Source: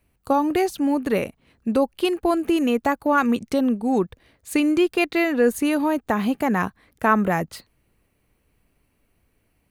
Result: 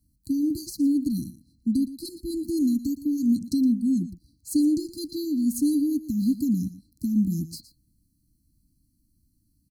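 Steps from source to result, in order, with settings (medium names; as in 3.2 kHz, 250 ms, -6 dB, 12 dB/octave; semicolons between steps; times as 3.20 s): brick-wall FIR band-stop 330–4000 Hz; Chebyshev shaper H 2 -39 dB, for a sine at -13 dBFS; delay 116 ms -15 dB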